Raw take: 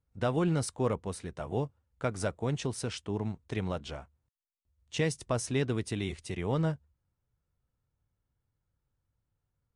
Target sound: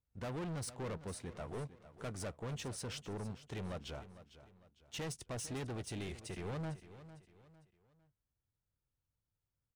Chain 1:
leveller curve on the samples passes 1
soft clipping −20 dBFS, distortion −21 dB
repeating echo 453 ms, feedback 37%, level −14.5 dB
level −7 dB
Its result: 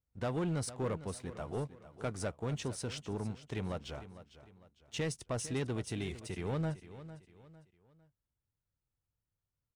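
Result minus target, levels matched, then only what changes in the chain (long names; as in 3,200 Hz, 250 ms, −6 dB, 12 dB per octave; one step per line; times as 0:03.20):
soft clipping: distortion −13 dB
change: soft clipping −31.5 dBFS, distortion −8 dB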